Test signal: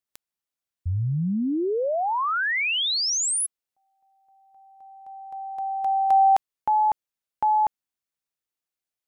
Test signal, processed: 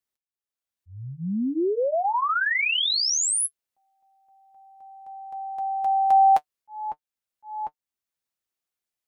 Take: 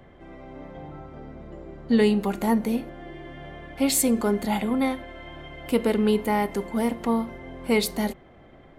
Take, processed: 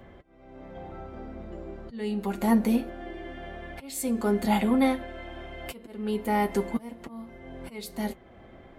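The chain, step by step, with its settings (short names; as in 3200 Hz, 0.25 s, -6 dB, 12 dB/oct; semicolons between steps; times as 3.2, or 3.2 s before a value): auto swell 0.718 s; notch comb 150 Hz; gain +2 dB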